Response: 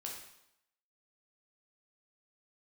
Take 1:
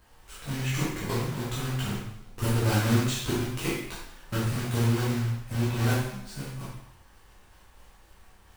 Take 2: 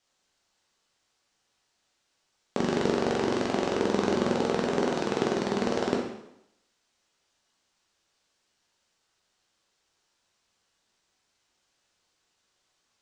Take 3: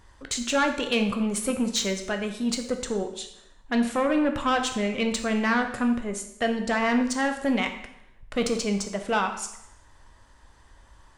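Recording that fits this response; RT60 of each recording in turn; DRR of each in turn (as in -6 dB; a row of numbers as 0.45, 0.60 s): 2; 0.80, 0.80, 0.80 s; -8.0, -2.0, 5.5 dB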